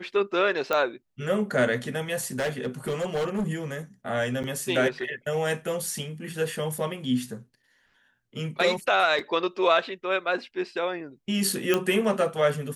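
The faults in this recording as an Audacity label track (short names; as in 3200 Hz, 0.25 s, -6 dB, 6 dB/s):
0.730000	0.730000	pop -12 dBFS
2.390000	3.480000	clipped -23.5 dBFS
4.430000	4.440000	gap 8.4 ms
9.190000	9.190000	gap 2.3 ms
11.740000	11.740000	pop -9 dBFS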